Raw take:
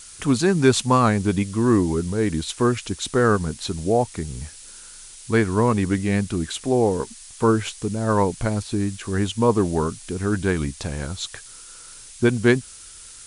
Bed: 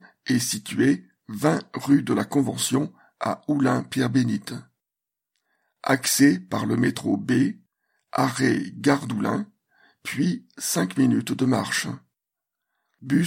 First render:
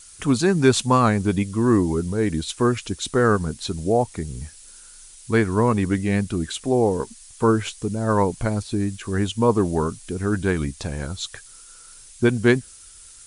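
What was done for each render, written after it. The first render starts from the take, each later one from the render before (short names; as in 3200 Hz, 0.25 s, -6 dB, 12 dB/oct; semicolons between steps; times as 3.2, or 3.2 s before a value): denoiser 6 dB, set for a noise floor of -43 dBFS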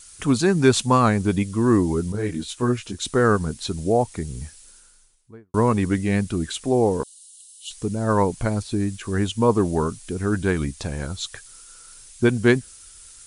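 2.12–3 detuned doubles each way 12 cents; 4.42–5.54 studio fade out; 7.03–7.71 rippled Chebyshev high-pass 2800 Hz, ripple 6 dB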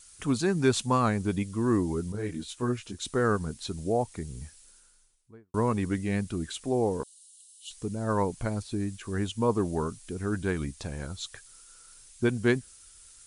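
gain -7.5 dB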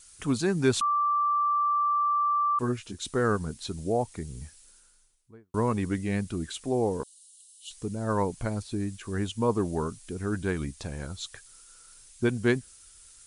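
0.81–2.59 bleep 1170 Hz -22 dBFS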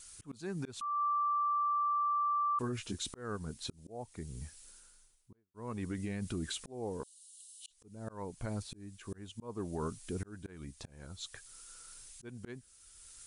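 auto swell 0.798 s; limiter -28.5 dBFS, peak gain reduction 10.5 dB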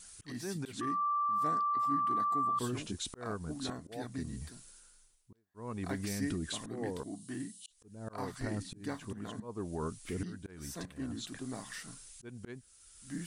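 add bed -20.5 dB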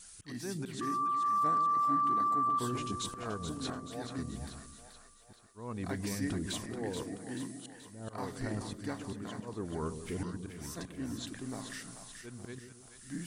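split-band echo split 550 Hz, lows 0.136 s, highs 0.431 s, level -8 dB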